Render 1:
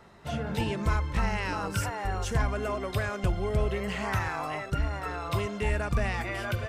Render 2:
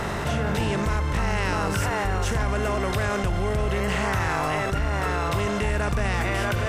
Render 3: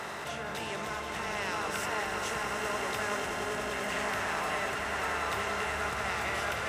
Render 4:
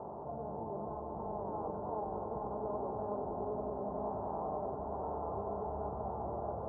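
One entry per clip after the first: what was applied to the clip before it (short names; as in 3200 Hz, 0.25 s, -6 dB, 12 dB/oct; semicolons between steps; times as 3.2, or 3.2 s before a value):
per-bin compression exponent 0.6; fast leveller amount 70%; gain -2 dB
HPF 710 Hz 6 dB/oct; on a send: swelling echo 96 ms, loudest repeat 8, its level -11 dB; on the sum: gain -6.5 dB
steep low-pass 940 Hz 48 dB/oct; gain -1.5 dB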